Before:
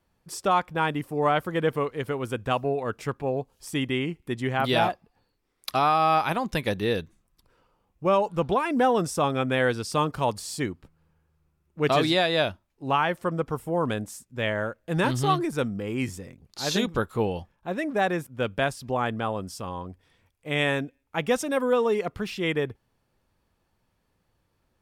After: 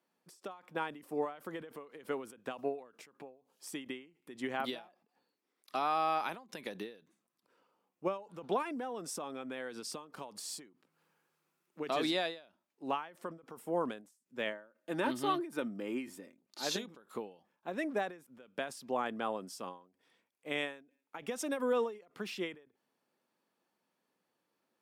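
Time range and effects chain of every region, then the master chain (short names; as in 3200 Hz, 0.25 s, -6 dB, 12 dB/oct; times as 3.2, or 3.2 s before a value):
8.62–11.8 compressor 16:1, threshold -29 dBFS + mismatched tape noise reduction encoder only
14.52–16.63 dynamic EQ 6500 Hz, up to -8 dB, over -52 dBFS, Q 1.2 + comb 3.3 ms, depth 39%
whole clip: HPF 210 Hz 24 dB/oct; limiter -15.5 dBFS; ending taper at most 140 dB/s; gain -6.5 dB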